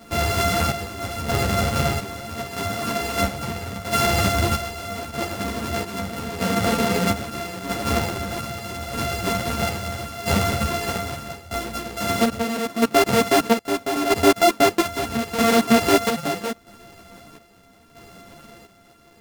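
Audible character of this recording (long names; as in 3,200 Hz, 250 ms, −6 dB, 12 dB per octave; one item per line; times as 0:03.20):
a buzz of ramps at a fixed pitch in blocks of 64 samples
chopped level 0.78 Hz, depth 60%, duty 55%
a shimmering, thickened sound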